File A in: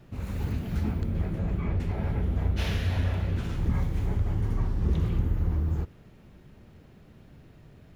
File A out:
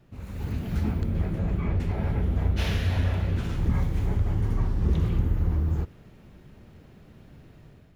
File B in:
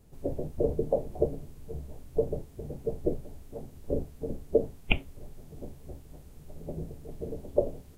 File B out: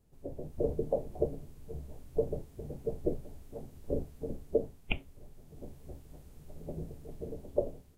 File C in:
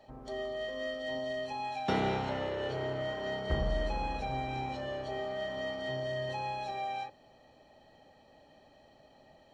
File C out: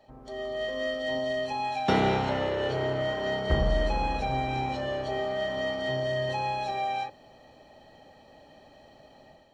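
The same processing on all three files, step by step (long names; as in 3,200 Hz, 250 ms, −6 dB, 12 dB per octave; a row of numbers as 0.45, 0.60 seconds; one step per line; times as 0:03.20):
automatic gain control gain up to 7.5 dB
normalise the peak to −12 dBFS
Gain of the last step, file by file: −5.5, −10.5, −1.0 decibels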